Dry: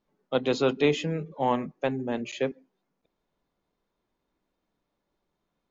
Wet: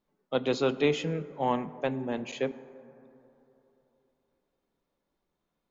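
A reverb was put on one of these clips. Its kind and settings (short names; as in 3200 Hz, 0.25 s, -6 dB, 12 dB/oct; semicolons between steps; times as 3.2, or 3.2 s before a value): plate-style reverb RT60 3.3 s, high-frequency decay 0.3×, DRR 15 dB; gain -2.5 dB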